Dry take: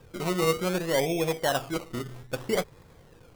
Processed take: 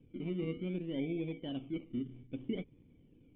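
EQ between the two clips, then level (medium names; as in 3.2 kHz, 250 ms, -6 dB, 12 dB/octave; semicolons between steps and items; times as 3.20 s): cascade formant filter i; treble shelf 2.9 kHz -7 dB; +2.0 dB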